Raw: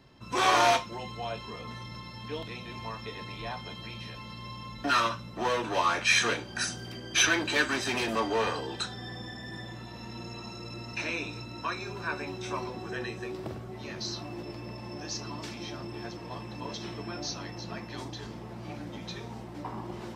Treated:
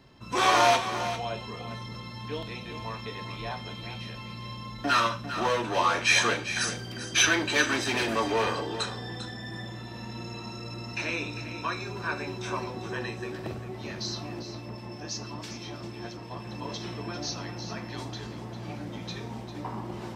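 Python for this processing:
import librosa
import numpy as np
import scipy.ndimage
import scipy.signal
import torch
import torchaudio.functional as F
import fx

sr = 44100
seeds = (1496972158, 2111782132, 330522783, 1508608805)

y = fx.harmonic_tremolo(x, sr, hz=6.1, depth_pct=50, crossover_hz=2100.0, at=(14.39, 16.46))
y = y + 10.0 ** (-11.0 / 20.0) * np.pad(y, (int(398 * sr / 1000.0), 0))[:len(y)]
y = fx.rev_schroeder(y, sr, rt60_s=0.36, comb_ms=30, drr_db=14.5)
y = F.gain(torch.from_numpy(y), 1.5).numpy()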